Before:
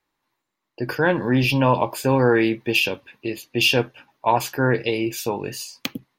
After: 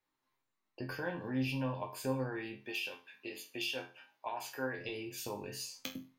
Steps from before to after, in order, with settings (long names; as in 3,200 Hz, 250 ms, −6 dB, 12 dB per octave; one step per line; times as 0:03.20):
0:02.59–0:04.78: high-pass filter 630 Hz 6 dB per octave
downward compressor 3 to 1, threshold −30 dBFS, peak gain reduction 13.5 dB
resonators tuned to a chord F2 minor, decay 0.33 s
level +4 dB